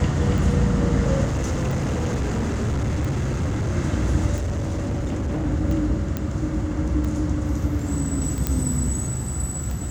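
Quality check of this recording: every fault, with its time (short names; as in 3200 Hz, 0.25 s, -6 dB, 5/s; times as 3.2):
tick 45 rpm
1.24–3.77 clipped -20 dBFS
4.35–5.47 clipped -21.5 dBFS
6.17 pop -12 dBFS
8.47 pop -7 dBFS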